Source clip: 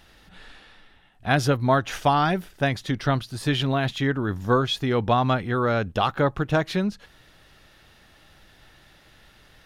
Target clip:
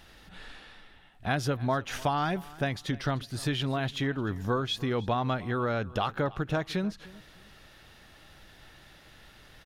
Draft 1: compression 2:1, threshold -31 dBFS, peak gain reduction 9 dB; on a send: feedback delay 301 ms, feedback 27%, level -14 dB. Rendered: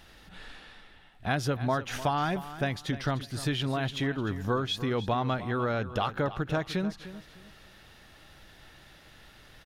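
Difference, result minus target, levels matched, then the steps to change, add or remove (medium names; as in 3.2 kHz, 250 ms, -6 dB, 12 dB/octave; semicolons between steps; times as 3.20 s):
echo-to-direct +6.5 dB
change: feedback delay 301 ms, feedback 27%, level -20.5 dB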